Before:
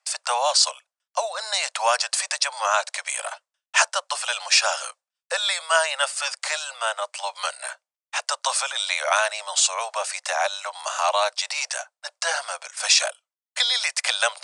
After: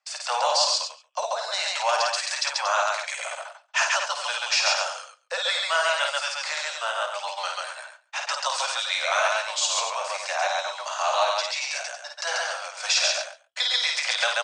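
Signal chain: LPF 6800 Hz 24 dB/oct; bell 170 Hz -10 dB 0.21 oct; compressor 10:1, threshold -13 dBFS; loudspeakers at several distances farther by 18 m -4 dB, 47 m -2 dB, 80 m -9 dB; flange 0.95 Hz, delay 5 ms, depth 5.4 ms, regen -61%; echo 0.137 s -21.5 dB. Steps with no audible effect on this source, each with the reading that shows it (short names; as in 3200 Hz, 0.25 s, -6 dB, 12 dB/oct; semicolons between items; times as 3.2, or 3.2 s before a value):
bell 170 Hz: input band starts at 430 Hz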